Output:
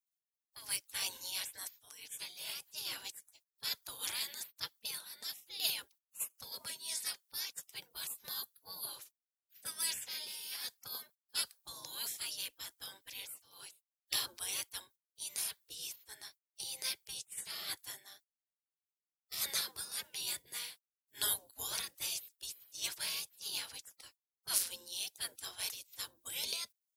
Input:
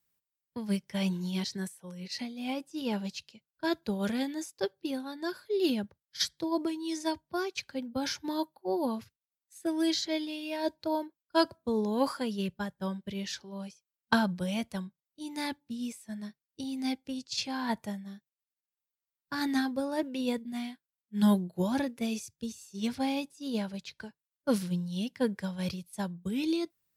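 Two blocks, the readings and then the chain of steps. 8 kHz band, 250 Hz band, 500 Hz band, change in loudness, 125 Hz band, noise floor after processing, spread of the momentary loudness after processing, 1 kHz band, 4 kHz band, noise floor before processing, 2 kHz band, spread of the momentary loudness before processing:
+6.0 dB, −36.0 dB, −25.0 dB, −6.5 dB, −26.5 dB, below −85 dBFS, 13 LU, −16.5 dB, 0.0 dB, below −85 dBFS, −7.0 dB, 12 LU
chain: gate on every frequency bin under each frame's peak −25 dB weak
first-order pre-emphasis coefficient 0.8
level +12 dB

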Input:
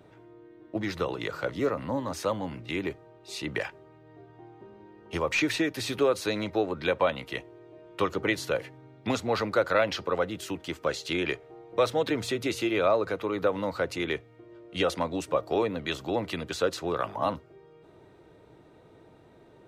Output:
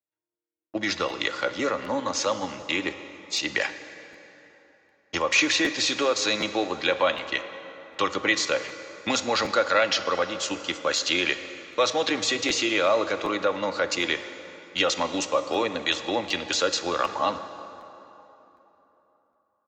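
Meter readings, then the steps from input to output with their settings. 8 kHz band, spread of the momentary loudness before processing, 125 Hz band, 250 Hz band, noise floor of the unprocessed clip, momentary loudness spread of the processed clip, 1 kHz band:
+11.5 dB, 10 LU, −6.5 dB, +0.5 dB, −55 dBFS, 11 LU, +4.5 dB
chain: noise gate −41 dBFS, range −45 dB
spectral tilt +3 dB per octave
comb filter 3.6 ms, depth 37%
in parallel at +1 dB: output level in coarse steps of 17 dB
on the sum: dense smooth reverb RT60 3.5 s, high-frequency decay 0.65×, DRR 10 dB
downsampling to 16,000 Hz
regular buffer underruns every 0.76 s, samples 512, repeat, from 0:00.32

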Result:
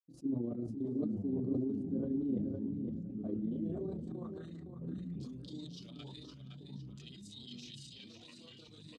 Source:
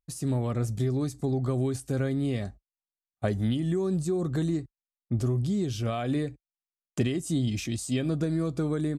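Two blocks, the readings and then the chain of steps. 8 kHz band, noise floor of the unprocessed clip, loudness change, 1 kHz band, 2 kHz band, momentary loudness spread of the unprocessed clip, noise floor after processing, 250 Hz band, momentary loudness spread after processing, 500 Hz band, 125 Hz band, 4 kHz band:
below −20 dB, below −85 dBFS, −10.5 dB, −21.0 dB, below −20 dB, 5 LU, −56 dBFS, −8.0 dB, 16 LU, −12.5 dB, −16.0 dB, −9.5 dB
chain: octave-band graphic EQ 125/250/500/2,000/4,000 Hz −4/+7/+5/−6/+6 dB
multi-voice chorus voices 6, 0.26 Hz, delay 24 ms, depth 1.8 ms
output level in coarse steps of 15 dB
auto-filter notch saw up 5.9 Hz 230–3,000 Hz
amplitude modulation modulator 27 Hz, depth 35%
band-pass filter sweep 280 Hz → 4,000 Hz, 0:03.25–0:05.27
on a send: repeating echo 512 ms, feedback 34%, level −8 dB
on the sum: delay with pitch and tempo change per echo 732 ms, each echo −4 semitones, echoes 3, each echo −6 dB
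level that may fall only so fast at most 29 dB per second

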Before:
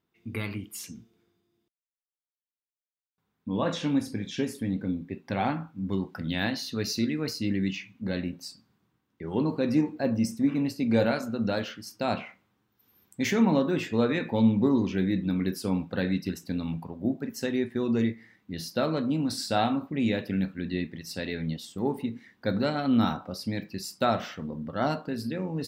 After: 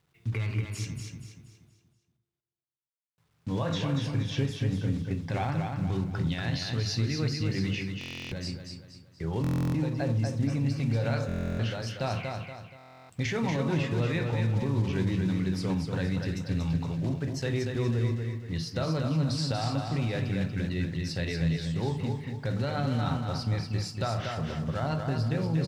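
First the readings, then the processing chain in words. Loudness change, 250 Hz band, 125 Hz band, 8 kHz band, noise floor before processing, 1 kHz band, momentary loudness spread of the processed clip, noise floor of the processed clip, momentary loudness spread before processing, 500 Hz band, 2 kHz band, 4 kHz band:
−1.5 dB, −4.5 dB, +6.5 dB, −2.5 dB, below −85 dBFS, −4.0 dB, 8 LU, −72 dBFS, 11 LU, −4.0 dB, −1.5 dB, −0.5 dB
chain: one scale factor per block 5 bits
low-pass filter 5,600 Hz 12 dB per octave
low shelf with overshoot 170 Hz +7.5 dB, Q 3
mains-hum notches 50/100/150/200/250/300/350 Hz
in parallel at −2 dB: downward compressor, threshold −36 dBFS, peak gain reduction 19 dB
on the sum: brickwall limiter −20 dBFS, peak gain reduction 10.5 dB
bit reduction 12 bits
on a send: repeating echo 237 ms, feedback 39%, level −5 dB
on the sum: buffer that repeats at 0:07.99/0:09.42/0:11.27/0:12.77, samples 1,024, times 13
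level −1.5 dB

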